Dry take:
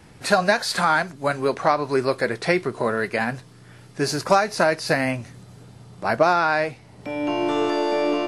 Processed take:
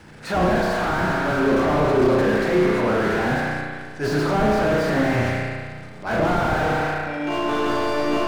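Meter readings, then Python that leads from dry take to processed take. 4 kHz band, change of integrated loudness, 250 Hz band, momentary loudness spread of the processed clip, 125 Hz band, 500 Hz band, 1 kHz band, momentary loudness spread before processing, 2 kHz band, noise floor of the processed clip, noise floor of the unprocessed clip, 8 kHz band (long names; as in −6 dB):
−2.5 dB, +1.0 dB, +5.0 dB, 8 LU, +7.0 dB, +1.5 dB, −0.5 dB, 10 LU, 0.0 dB, −37 dBFS, −48 dBFS, −5.5 dB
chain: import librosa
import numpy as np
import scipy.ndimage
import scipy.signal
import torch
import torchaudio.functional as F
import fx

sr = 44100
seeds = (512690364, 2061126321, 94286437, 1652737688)

y = scipy.signal.sosfilt(scipy.signal.butter(2, 8600.0, 'lowpass', fs=sr, output='sos'), x)
y = fx.hum_notches(y, sr, base_hz=60, count=3)
y = fx.transient(y, sr, attack_db=-9, sustain_db=10)
y = fx.peak_eq(y, sr, hz=1500.0, db=5.5, octaves=0.3)
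y = fx.rev_spring(y, sr, rt60_s=1.6, pass_ms=(33,), chirp_ms=30, drr_db=-2.5)
y = fx.quant_dither(y, sr, seeds[0], bits=12, dither='none')
y = fx.slew_limit(y, sr, full_power_hz=75.0)
y = y * 10.0 ** (1.5 / 20.0)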